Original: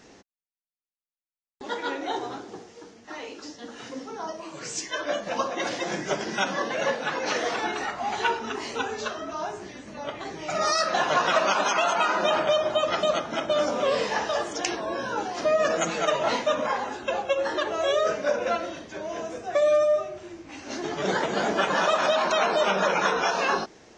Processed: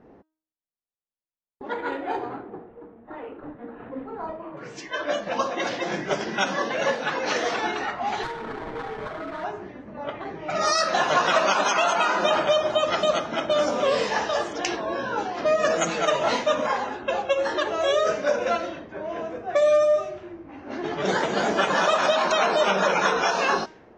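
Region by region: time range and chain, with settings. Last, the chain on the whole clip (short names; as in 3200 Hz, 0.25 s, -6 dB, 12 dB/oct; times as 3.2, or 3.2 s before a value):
1.72–4.57 doubler 30 ms -13 dB + decimation joined by straight lines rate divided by 8×
8.23–9.44 sample-rate reducer 2700 Hz, jitter 20% + comb 6.3 ms, depth 46% + compressor, threshold -30 dBFS
whole clip: de-hum 314.4 Hz, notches 29; low-pass opened by the level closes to 860 Hz, open at -21 dBFS; gain +2 dB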